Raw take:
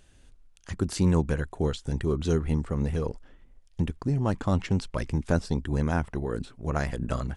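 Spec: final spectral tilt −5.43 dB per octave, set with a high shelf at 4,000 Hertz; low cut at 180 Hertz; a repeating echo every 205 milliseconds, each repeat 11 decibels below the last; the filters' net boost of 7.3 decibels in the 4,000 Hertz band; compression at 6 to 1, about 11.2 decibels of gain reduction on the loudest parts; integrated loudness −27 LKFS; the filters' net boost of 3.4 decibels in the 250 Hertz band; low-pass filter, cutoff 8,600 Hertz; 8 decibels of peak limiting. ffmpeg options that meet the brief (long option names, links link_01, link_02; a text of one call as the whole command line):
ffmpeg -i in.wav -af "highpass=180,lowpass=8600,equalizer=frequency=250:width_type=o:gain=7,highshelf=frequency=4000:gain=4.5,equalizer=frequency=4000:width_type=o:gain=6.5,acompressor=threshold=-30dB:ratio=6,alimiter=limit=-24dB:level=0:latency=1,aecho=1:1:205|410|615:0.282|0.0789|0.0221,volume=9.5dB" out.wav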